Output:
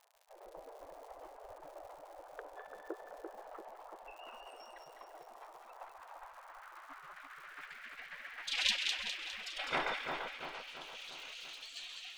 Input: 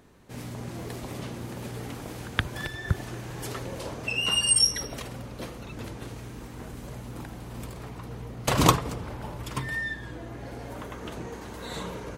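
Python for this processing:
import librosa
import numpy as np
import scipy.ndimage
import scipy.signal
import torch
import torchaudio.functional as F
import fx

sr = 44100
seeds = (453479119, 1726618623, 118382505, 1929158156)

p1 = fx.tremolo_shape(x, sr, shape='saw_down', hz=7.4, depth_pct=70)
p2 = np.clip(10.0 ** (18.5 / 20.0) * p1, -1.0, 1.0) / 10.0 ** (18.5 / 20.0)
p3 = fx.filter_sweep_lowpass(p2, sr, from_hz=240.0, to_hz=1900.0, start_s=5.02, end_s=8.83, q=1.3)
p4 = fx.dmg_crackle(p3, sr, seeds[0], per_s=120.0, level_db=-67.0)
p5 = fx.spec_gate(p4, sr, threshold_db=-30, keep='weak')
p6 = p5 + fx.echo_split(p5, sr, split_hz=1600.0, low_ms=341, high_ms=204, feedback_pct=52, wet_db=-4.5, dry=0)
p7 = fx.env_flatten(p6, sr, amount_pct=100, at=(10.93, 11.56))
y = p7 * librosa.db_to_amplitude(17.5)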